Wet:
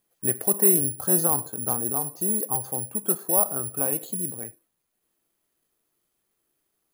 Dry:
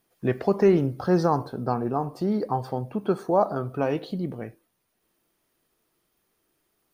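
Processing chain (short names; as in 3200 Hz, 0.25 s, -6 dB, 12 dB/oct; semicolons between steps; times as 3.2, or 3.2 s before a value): high shelf 5700 Hz +6 dB; careless resampling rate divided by 4×, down filtered, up zero stuff; gain -6.5 dB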